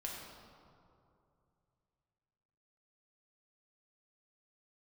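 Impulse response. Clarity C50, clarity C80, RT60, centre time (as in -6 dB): 0.5 dB, 2.5 dB, 2.6 s, 95 ms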